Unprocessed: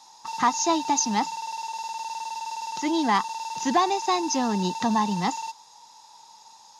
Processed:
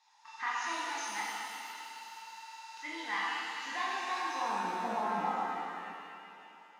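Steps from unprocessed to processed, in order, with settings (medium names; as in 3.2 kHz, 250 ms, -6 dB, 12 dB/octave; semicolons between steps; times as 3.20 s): band-pass sweep 2 kHz -> 610 Hz, 3.97–4.82 s; pitch-shifted reverb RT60 2.5 s, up +7 st, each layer -8 dB, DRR -6.5 dB; trim -7.5 dB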